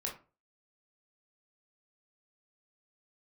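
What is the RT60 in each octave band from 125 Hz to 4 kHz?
0.40, 0.35, 0.35, 0.35, 0.25, 0.20 seconds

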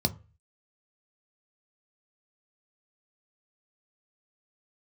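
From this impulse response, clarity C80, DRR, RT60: 25.0 dB, 7.5 dB, 0.35 s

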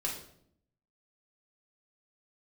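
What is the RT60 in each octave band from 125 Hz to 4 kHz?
0.95, 1.0, 0.75, 0.60, 0.50, 0.50 seconds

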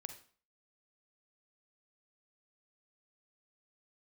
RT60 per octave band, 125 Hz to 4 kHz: 0.40, 0.45, 0.45, 0.45, 0.40, 0.40 seconds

